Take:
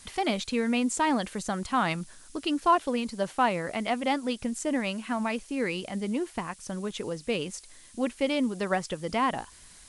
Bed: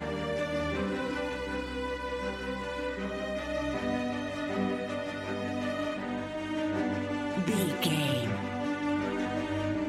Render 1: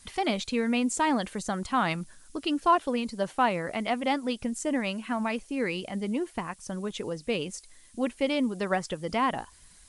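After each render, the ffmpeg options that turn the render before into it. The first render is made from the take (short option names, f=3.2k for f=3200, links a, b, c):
-af "afftdn=nr=6:nf=-52"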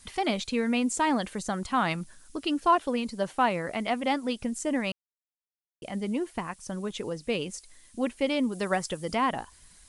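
-filter_complex "[0:a]asettb=1/sr,asplit=3[a][b][c];[a]atrim=end=8.524[d];[b]atrim=start=8.52:end=9.15,asetpts=PTS-STARTPTS,afade=t=in:d=0.004:c=qsin,afade=t=out:st=0.626:d=0.004:c=qsin,highshelf=f=8.1k:g=11.5[e];[c]atrim=start=9.146[f];[d][e]acrossfade=d=0.004:c1=hsin:c2=qsin[g];[g][f]acrossfade=d=0.004:c1=qsin:c2=hsin,asplit=3[h][i][j];[h]atrim=end=4.92,asetpts=PTS-STARTPTS,afade=t=out:st=4.916:d=0.004:c=hsin[k];[i]atrim=start=4.92:end=5.82,asetpts=PTS-STARTPTS,volume=0[l];[j]atrim=start=5.82,asetpts=PTS-STARTPTS,afade=t=in:d=0.004:c=hsin[m];[k][l][m]concat=n=3:v=0:a=1"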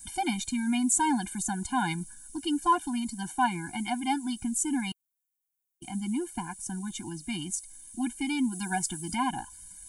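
-af "aexciter=amount=5.5:drive=4.2:freq=6.6k,afftfilt=real='re*eq(mod(floor(b*sr/1024/350),2),0)':imag='im*eq(mod(floor(b*sr/1024/350),2),0)':win_size=1024:overlap=0.75"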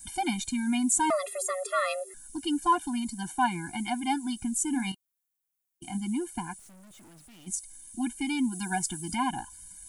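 -filter_complex "[0:a]asettb=1/sr,asplit=3[a][b][c];[a]atrim=end=1.104[d];[b]atrim=start=1.1:end=2.14,asetpts=PTS-STARTPTS,afade=t=in:d=0.004:c=qsin,afade=t=out:st=1.036:d=0.004:c=qsin,afreqshift=370[e];[c]atrim=start=2.136[f];[d][e]acrossfade=d=0.004:c1=hsin:c2=qsin[g];[g][f]acrossfade=d=0.004:c1=qsin:c2=hsin,asettb=1/sr,asplit=3[h][i][j];[h]atrim=end=4.714[k];[i]atrim=start=4.71:end=5.98,asetpts=PTS-STARTPTS,afade=t=in:d=0.004:c=qsin,afade=t=out:st=1.266:d=0.004:c=qsin,asplit=2[l][m];[m]adelay=26,volume=-9dB[n];[l][n]amix=inputs=2:normalize=0,atrim=end_sample=56007[o];[j]atrim=start=5.976[p];[k][o]acrossfade=d=0.004:c1=hsin:c2=qsin[q];[q][p]acrossfade=d=0.004:c1=qsin:c2=hsin,asplit=3[r][s][t];[r]afade=t=out:st=6.58:d=0.02[u];[s]aeval=exprs='(tanh(398*val(0)+0.4)-tanh(0.4))/398':c=same,afade=t=in:st=6.58:d=0.02,afade=t=out:st=7.46:d=0.02[v];[t]afade=t=in:st=7.46:d=0.02[w];[u][v][w]amix=inputs=3:normalize=0"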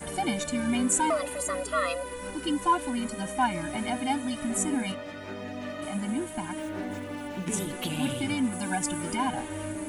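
-filter_complex "[1:a]volume=-4dB[a];[0:a][a]amix=inputs=2:normalize=0"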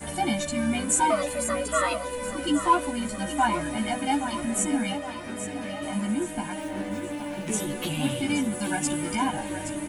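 -filter_complex "[0:a]asplit=2[a][b];[b]adelay=14,volume=-2dB[c];[a][c]amix=inputs=2:normalize=0,aecho=1:1:822|1644|2466|3288|4110:0.299|0.143|0.0688|0.033|0.0158"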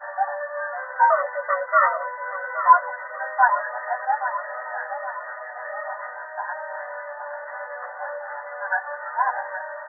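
-af "afftfilt=real='re*between(b*sr/4096,500,2000)':imag='im*between(b*sr/4096,500,2000)':win_size=4096:overlap=0.75,equalizer=f=1.4k:w=0.94:g=10.5"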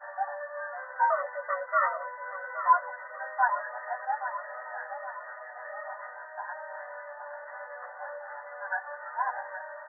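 -af "volume=-8dB"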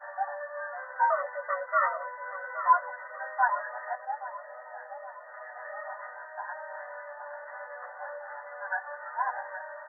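-filter_complex "[0:a]asettb=1/sr,asplit=3[a][b][c];[a]atrim=end=3.954[d];[b]atrim=start=3.95:end=5.34,asetpts=PTS-STARTPTS,afade=t=in:d=0.004:c=qsin,afade=t=out:st=1.386:d=0.004:c=qsin,equalizer=f=1.5k:w=0.87:g=-8[e];[c]atrim=start=5.336[f];[d][e]acrossfade=d=0.004:c1=hsin:c2=qsin[g];[g][f]acrossfade=d=0.004:c1=qsin:c2=hsin"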